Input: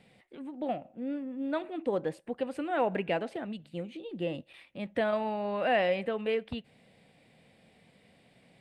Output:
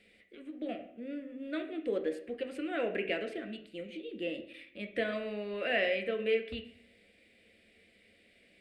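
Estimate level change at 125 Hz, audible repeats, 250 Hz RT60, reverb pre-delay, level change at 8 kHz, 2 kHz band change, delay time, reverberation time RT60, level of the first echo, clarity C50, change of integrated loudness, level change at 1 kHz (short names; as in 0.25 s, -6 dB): -9.0 dB, none, 0.75 s, 3 ms, n/a, +1.0 dB, none, 0.60 s, none, 10.5 dB, -3.0 dB, -11.0 dB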